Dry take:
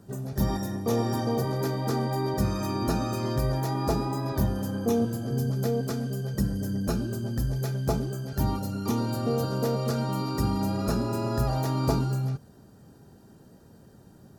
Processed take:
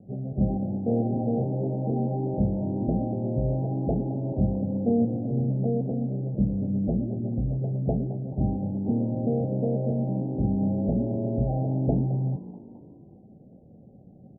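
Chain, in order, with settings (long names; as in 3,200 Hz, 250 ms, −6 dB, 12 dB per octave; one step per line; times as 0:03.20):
Chebyshev low-pass with heavy ripple 780 Hz, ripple 6 dB
on a send: echo with shifted repeats 215 ms, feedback 50%, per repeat +52 Hz, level −16 dB
on the sum: level +4 dB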